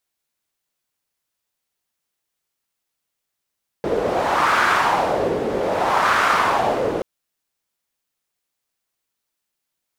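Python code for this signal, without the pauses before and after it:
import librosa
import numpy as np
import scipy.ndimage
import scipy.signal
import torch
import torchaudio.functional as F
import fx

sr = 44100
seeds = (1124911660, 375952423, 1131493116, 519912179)

y = fx.wind(sr, seeds[0], length_s=3.18, low_hz=420.0, high_hz=1300.0, q=2.5, gusts=2, swing_db=5.0)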